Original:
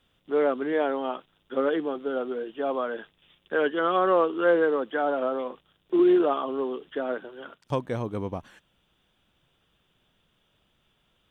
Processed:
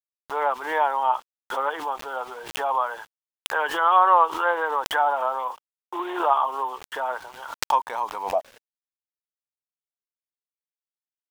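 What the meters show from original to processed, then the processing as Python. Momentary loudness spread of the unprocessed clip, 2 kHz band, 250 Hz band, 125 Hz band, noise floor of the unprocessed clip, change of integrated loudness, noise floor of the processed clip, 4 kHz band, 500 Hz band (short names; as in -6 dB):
12 LU, +5.0 dB, -13.5 dB, under -15 dB, -70 dBFS, +2.0 dB, under -85 dBFS, n/a, -5.0 dB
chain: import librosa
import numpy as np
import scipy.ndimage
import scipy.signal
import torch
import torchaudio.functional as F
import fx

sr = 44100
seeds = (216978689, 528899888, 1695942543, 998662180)

y = fx.filter_sweep_highpass(x, sr, from_hz=910.0, to_hz=110.0, start_s=8.19, end_s=9.35, q=7.9)
y = np.where(np.abs(y) >= 10.0 ** (-45.5 / 20.0), y, 0.0)
y = fx.pre_swell(y, sr, db_per_s=81.0)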